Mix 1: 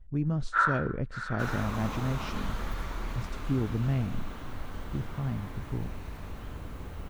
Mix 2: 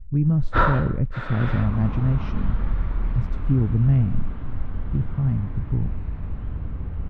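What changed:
first sound: remove band-pass 1500 Hz, Q 4.4; second sound: add air absorption 200 m; master: add tone controls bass +12 dB, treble -13 dB

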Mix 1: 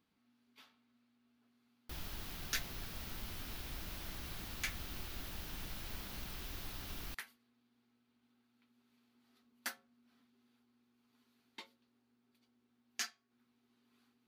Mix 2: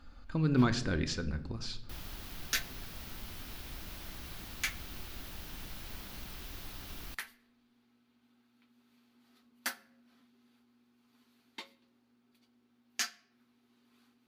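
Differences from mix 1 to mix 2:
speech: unmuted; second sound +4.5 dB; reverb: on, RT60 0.95 s

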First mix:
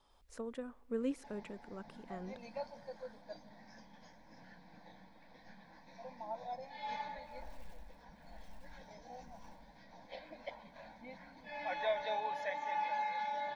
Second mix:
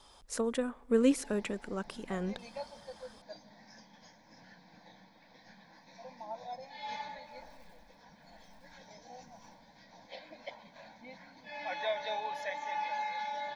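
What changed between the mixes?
speech +10.5 dB; first sound -11.0 dB; master: add high shelf 3600 Hz +10 dB

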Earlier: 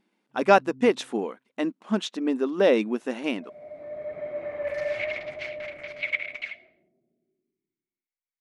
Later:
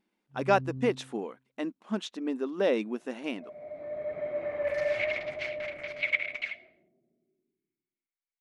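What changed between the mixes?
speech -6.5 dB; first sound: remove vocal tract filter u

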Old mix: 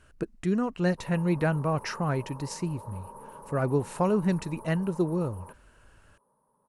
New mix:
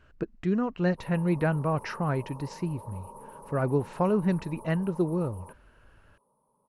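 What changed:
speech: add Gaussian blur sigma 1.7 samples; background: add Butterworth band-stop 2000 Hz, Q 0.93

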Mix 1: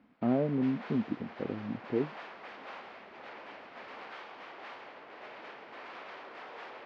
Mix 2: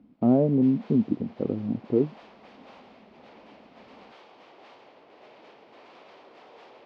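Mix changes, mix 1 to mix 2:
speech +9.0 dB; master: add bell 1600 Hz -11.5 dB 1.4 oct

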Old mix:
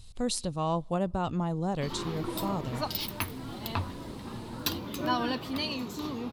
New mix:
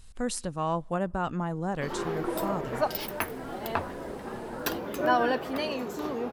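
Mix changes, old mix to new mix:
background: add band shelf 550 Hz +9 dB 1.3 oct; master: add fifteen-band EQ 100 Hz -10 dB, 1600 Hz +9 dB, 4000 Hz -8 dB

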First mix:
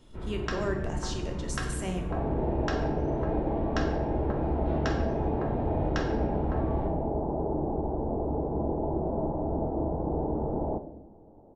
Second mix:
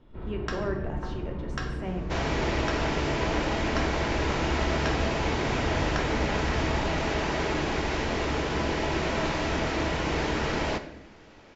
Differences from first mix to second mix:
speech: add LPF 2100 Hz 12 dB/oct; second sound: remove elliptic low-pass 820 Hz, stop band 70 dB

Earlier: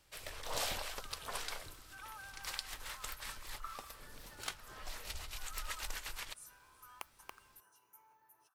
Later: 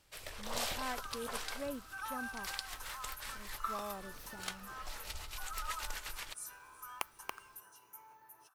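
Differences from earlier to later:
speech: unmuted; second sound +8.5 dB

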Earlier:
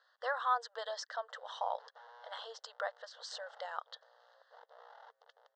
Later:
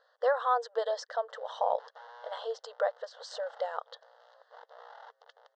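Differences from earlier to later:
speech: remove HPF 1100 Hz 12 dB/oct; background +6.0 dB

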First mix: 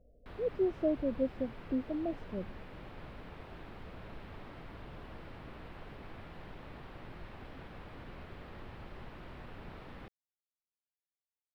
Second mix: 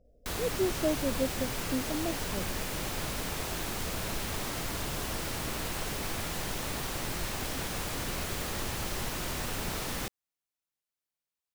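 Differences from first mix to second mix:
background +11.0 dB; master: remove air absorption 440 m

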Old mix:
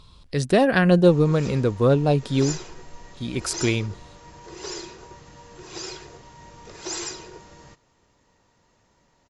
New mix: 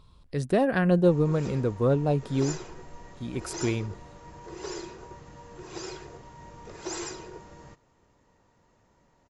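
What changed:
speech -5.0 dB; master: add bell 4600 Hz -8 dB 2.2 oct

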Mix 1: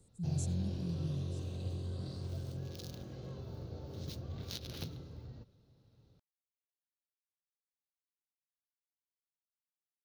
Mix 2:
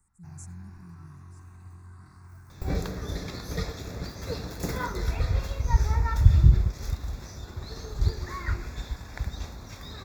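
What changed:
first sound: add fixed phaser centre 1300 Hz, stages 4; second sound: unmuted; master: add graphic EQ 125/250/500/1000/2000/4000 Hz -11/-5/-10/+8/+9/-12 dB

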